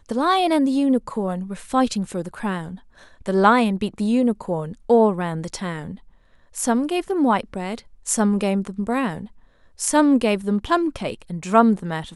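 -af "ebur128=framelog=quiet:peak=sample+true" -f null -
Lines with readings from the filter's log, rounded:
Integrated loudness:
  I:         -21.2 LUFS
  Threshold: -31.8 LUFS
Loudness range:
  LRA:         2.6 LU
  Threshold: -42.2 LUFS
  LRA low:   -23.5 LUFS
  LRA high:  -20.9 LUFS
Sample peak:
  Peak:       -3.0 dBFS
True peak:
  Peak:       -3.0 dBFS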